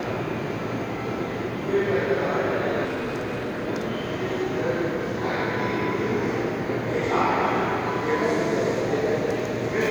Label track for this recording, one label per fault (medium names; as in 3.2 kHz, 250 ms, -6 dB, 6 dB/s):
2.840000	3.670000	clipped -25 dBFS